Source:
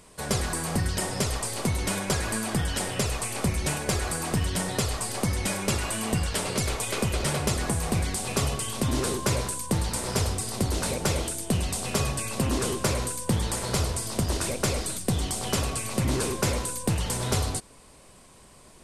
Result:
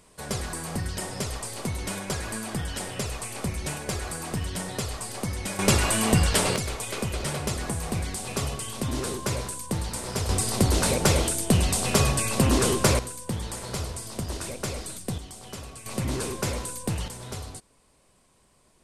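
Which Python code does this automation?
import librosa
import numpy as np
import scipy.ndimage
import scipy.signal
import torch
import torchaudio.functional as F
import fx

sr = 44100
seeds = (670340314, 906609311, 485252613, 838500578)

y = fx.gain(x, sr, db=fx.steps((0.0, -4.0), (5.59, 6.0), (6.56, -3.0), (10.29, 5.0), (12.99, -5.5), (15.18, -12.5), (15.86, -3.0), (17.08, -10.5)))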